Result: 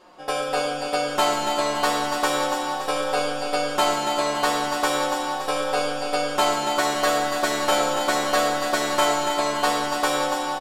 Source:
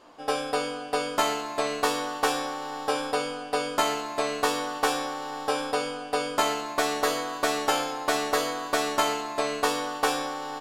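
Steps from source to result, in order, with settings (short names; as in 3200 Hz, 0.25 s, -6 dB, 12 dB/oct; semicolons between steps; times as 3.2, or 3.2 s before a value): comb 5.5 ms, depth 70%; feedback echo 0.284 s, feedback 53%, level -7.5 dB; on a send at -4 dB: reverb RT60 1.8 s, pre-delay 35 ms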